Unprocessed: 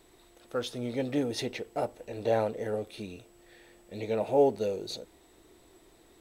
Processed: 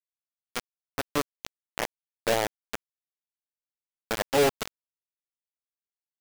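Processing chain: bit crusher 4-bit

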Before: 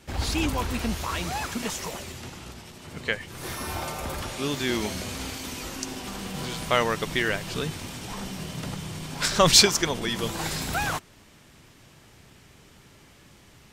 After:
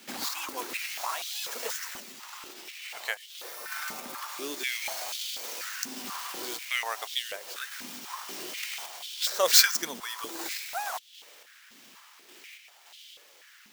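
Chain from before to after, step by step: median filter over 5 samples; tilt EQ +4.5 dB/octave; in parallel at -0.5 dB: compression, threshold -35 dBFS, peak gain reduction 30 dB; on the sum: dynamic bell 3 kHz, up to -6 dB, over -36 dBFS, Q 1.1; random-step tremolo; step-sequenced high-pass 4.1 Hz 230–3300 Hz; trim -6.5 dB

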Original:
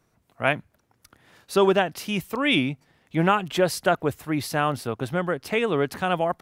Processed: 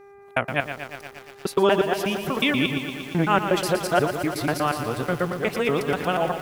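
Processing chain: time reversed locally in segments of 121 ms; mains buzz 400 Hz, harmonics 6, -48 dBFS -8 dB/octave; bit-crushed delay 117 ms, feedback 80%, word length 7-bit, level -9 dB

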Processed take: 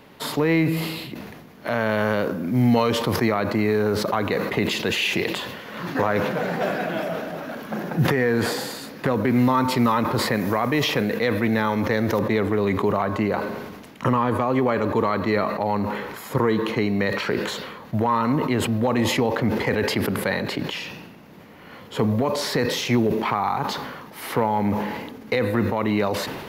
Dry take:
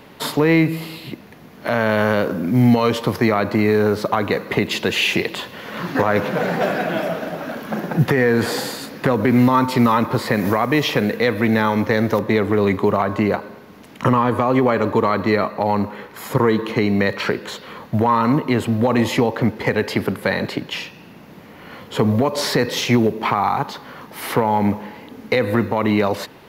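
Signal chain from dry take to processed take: decay stretcher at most 39 dB/s; trim -5 dB

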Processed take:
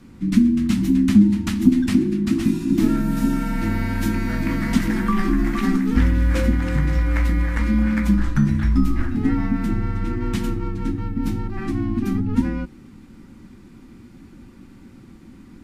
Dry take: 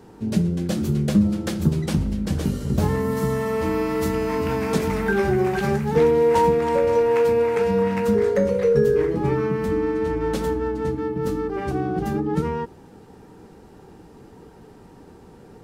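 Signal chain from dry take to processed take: frequency shift -410 Hz; graphic EQ 250/500/2000 Hz +8/-10/+7 dB

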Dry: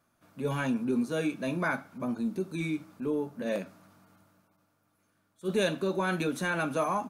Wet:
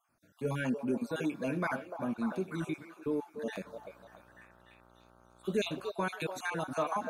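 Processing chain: random holes in the spectrogram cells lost 38%; 3.54–5.90 s: mains buzz 60 Hz, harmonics 26, -60 dBFS -2 dB/octave; repeats whose band climbs or falls 295 ms, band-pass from 610 Hz, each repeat 0.7 oct, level -4 dB; trim -2.5 dB

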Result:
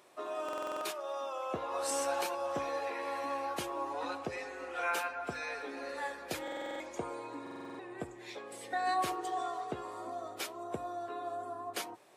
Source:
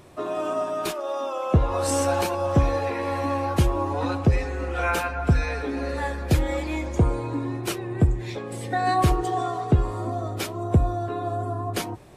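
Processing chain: Bessel high-pass 570 Hz, order 2; buffer glitch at 0.44/6.43/7.42 s, samples 2048, times 7; trim -7.5 dB

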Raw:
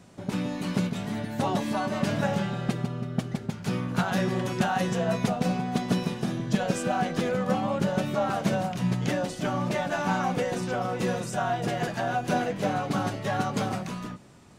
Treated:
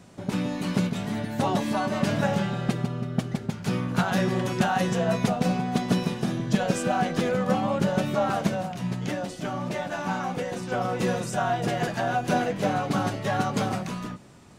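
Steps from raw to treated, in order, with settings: 8.47–10.72 s: flange 1.4 Hz, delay 9.2 ms, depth 4.3 ms, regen +75%; trim +2 dB

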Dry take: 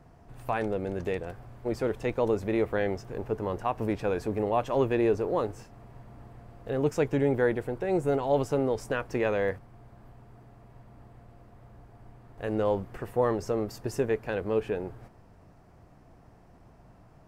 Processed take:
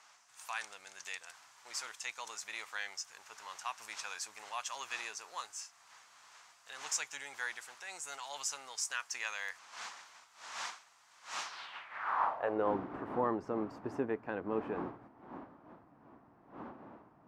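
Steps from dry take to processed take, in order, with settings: wind noise 620 Hz -40 dBFS; band-pass sweep 6.6 kHz -> 290 Hz, 11.42–12.72 s; resonant low shelf 680 Hz -14 dB, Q 1.5; trim +14 dB

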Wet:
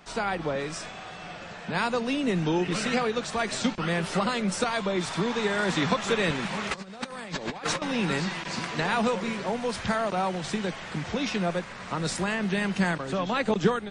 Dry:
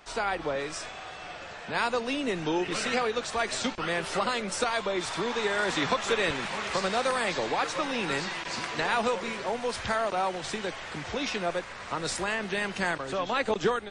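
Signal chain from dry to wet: peaking EQ 180 Hz +11.5 dB 0.93 oct; 6.71–7.82 s: compressor with a negative ratio -33 dBFS, ratio -0.5

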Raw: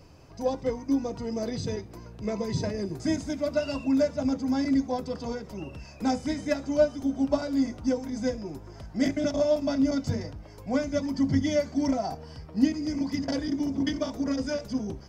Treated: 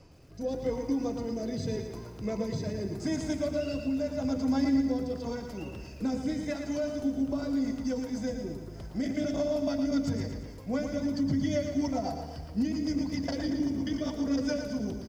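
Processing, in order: peak limiter -21 dBFS, peak gain reduction 10.5 dB; rotary cabinet horn 0.85 Hz, later 7.5 Hz, at 8.67 s; on a send: delay 176 ms -18 dB; on the sum: bit-crushed delay 114 ms, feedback 55%, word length 10-bit, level -7 dB

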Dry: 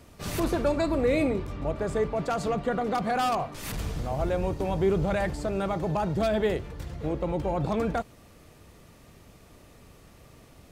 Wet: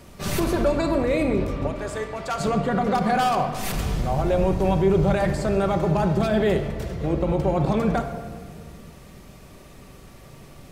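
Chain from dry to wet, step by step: 1.67–2.40 s: high-pass 1.3 kHz 6 dB/octave; peak limiter -20 dBFS, peak gain reduction 6 dB; simulated room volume 2600 m³, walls mixed, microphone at 1.1 m; trim +5.5 dB

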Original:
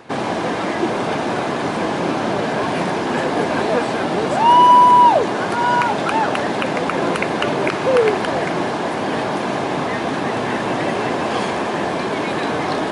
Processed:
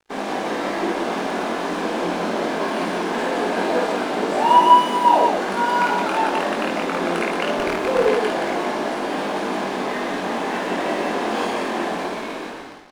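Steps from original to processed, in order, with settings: fade out at the end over 1.08 s; steep high-pass 180 Hz 48 dB/octave; crossover distortion -36 dBFS; chorus 0.22 Hz, delay 19.5 ms, depth 3.4 ms; on a send: loudspeakers at several distances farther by 18 m -2 dB, 39 m -12 dB, 60 m -3 dB; 7.59–8.09 s: on the sum: sliding maximum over 5 samples; trim -2 dB

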